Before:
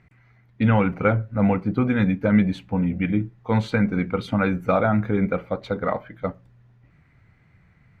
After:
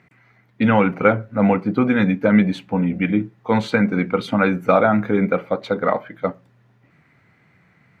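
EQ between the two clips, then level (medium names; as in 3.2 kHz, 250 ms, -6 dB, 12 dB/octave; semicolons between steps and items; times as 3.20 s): high-pass 190 Hz 12 dB/octave; +5.5 dB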